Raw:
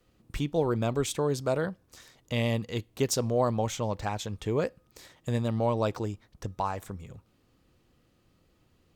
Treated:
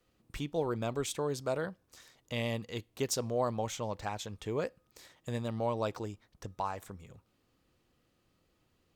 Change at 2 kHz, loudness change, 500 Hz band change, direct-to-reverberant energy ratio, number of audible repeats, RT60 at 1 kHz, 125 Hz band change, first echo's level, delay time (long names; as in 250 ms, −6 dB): −4.0 dB, −6.0 dB, −5.5 dB, no reverb audible, no echo audible, no reverb audible, −8.5 dB, no echo audible, no echo audible